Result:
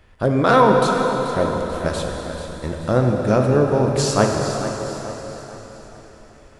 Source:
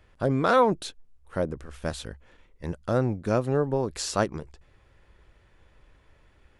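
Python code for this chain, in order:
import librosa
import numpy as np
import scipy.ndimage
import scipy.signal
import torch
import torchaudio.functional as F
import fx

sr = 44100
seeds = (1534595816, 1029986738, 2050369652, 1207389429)

p1 = x + fx.echo_feedback(x, sr, ms=436, feedback_pct=43, wet_db=-11.5, dry=0)
p2 = fx.rev_plate(p1, sr, seeds[0], rt60_s=4.2, hf_ratio=0.95, predelay_ms=0, drr_db=1.0)
y = F.gain(torch.from_numpy(p2), 6.0).numpy()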